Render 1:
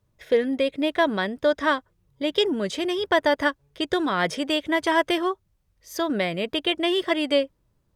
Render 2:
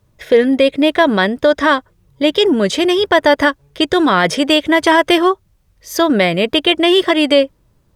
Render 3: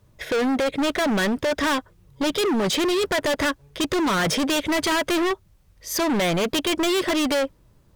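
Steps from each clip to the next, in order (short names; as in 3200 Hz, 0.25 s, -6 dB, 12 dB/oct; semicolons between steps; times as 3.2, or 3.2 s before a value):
maximiser +13 dB; gain -1 dB
overloaded stage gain 20 dB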